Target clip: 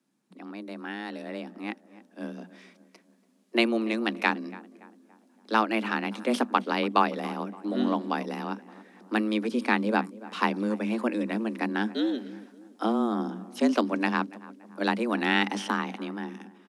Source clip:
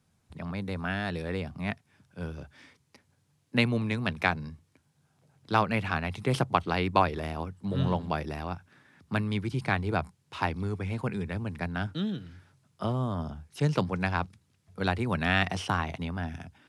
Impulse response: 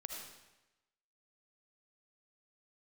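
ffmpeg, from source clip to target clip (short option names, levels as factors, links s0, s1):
-filter_complex "[0:a]asplit=2[s0][s1];[s1]adelay=285,lowpass=f=1500:p=1,volume=0.126,asplit=2[s2][s3];[s3]adelay=285,lowpass=f=1500:p=1,volume=0.51,asplit=2[s4][s5];[s5]adelay=285,lowpass=f=1500:p=1,volume=0.51,asplit=2[s6][s7];[s7]adelay=285,lowpass=f=1500:p=1,volume=0.51[s8];[s0][s2][s4][s6][s8]amix=inputs=5:normalize=0,afreqshift=110,dynaudnorm=f=130:g=31:m=3.76,volume=0.531"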